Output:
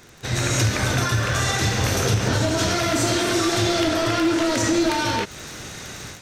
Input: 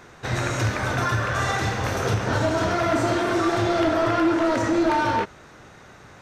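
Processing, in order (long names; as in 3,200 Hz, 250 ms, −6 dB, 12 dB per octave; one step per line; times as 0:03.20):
automatic gain control gain up to 12 dB
high-shelf EQ 2,100 Hz +7 dB, from 0:02.59 +12 dB
surface crackle 56 per second −27 dBFS
downward compressor 5 to 1, threshold −15 dBFS, peak gain reduction 9 dB
parametric band 1,100 Hz −8 dB 2.3 octaves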